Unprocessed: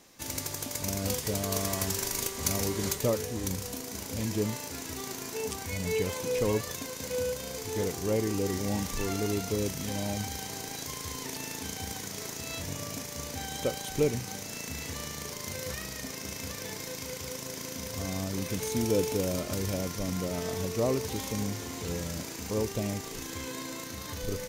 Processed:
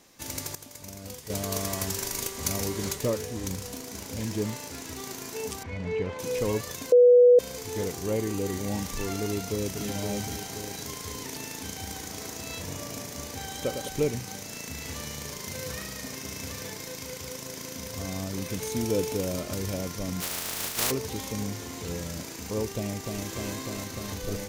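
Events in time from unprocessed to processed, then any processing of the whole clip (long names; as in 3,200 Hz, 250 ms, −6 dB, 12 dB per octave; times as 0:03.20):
0:00.55–0:01.30: clip gain −10 dB
0:02.83–0:05.01: highs frequency-modulated by the lows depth 0.17 ms
0:05.63–0:06.19: low-pass filter 2,300 Hz
0:06.92–0:07.39: beep over 490 Hz −12 dBFS
0:08.07–0:08.73: notch filter 5,300 Hz, Q 8.7
0:09.23–0:09.84: delay throw 520 ms, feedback 55%, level −5.5 dB
0:11.67–0:13.88: bucket-brigade delay 105 ms, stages 1,024, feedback 76%, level −7 dB
0:14.77–0:16.70: single-tap delay 81 ms −6 dB
0:20.20–0:20.90: compressing power law on the bin magnitudes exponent 0.19
0:22.75–0:23.25: delay throw 300 ms, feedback 85%, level −3 dB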